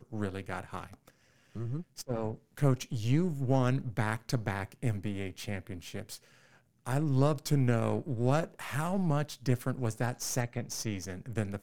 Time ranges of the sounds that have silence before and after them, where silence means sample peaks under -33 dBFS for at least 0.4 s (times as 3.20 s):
1.56–6.15 s